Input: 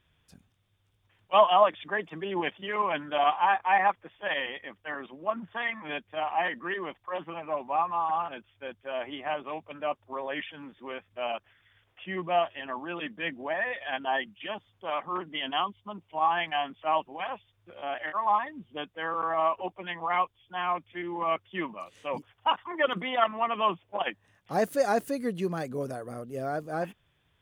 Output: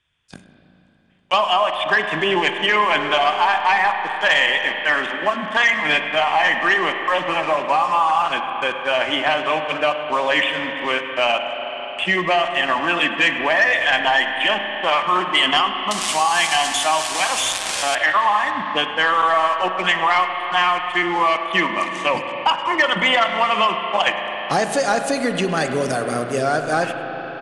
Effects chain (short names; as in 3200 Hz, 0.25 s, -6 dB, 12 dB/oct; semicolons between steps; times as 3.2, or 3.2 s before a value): 15.91–17.95 switching spikes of -20.5 dBFS; gate -57 dBFS, range -18 dB; low shelf 230 Hz +4.5 dB; compressor 10:1, threshold -28 dBFS, peak gain reduction 14.5 dB; tilt shelf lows -7 dB, about 870 Hz; sample leveller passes 2; steep low-pass 9500 Hz 36 dB/oct; echo 0.103 s -21.5 dB; spring tank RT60 3.1 s, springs 33/38 ms, chirp 30 ms, DRR 6 dB; three-band squash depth 40%; gain +7 dB